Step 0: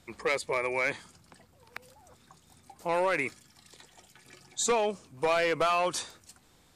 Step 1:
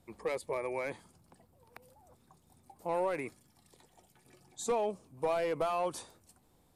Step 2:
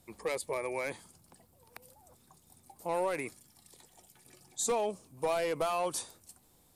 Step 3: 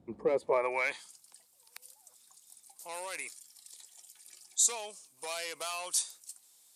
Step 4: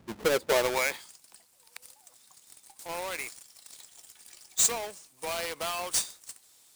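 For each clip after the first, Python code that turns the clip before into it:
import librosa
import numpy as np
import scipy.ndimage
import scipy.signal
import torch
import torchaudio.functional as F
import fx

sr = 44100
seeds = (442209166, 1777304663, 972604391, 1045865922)

y1 = fx.band_shelf(x, sr, hz=3100.0, db=-9.0, octaves=2.9)
y1 = F.gain(torch.from_numpy(y1), -4.0).numpy()
y2 = fx.high_shelf(y1, sr, hz=3600.0, db=10.5)
y3 = fx.filter_sweep_bandpass(y2, sr, from_hz=230.0, to_hz=6900.0, start_s=0.22, end_s=1.16, q=0.81)
y3 = F.gain(torch.from_numpy(y3), 8.5).numpy()
y4 = fx.halfwave_hold(y3, sr)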